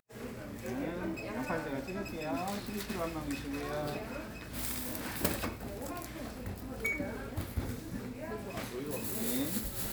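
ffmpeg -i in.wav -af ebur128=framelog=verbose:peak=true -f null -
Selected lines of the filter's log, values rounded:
Integrated loudness:
  I:         -37.4 LUFS
  Threshold: -47.4 LUFS
Loudness range:
  LRA:         2.3 LU
  Threshold: -57.6 LUFS
  LRA low:   -39.0 LUFS
  LRA high:  -36.6 LUFS
True peak:
  Peak:      -12.7 dBFS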